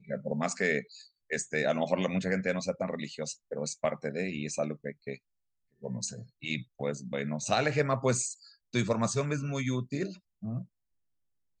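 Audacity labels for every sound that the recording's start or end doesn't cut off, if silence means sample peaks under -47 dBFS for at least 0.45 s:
5.820000	10.650000	sound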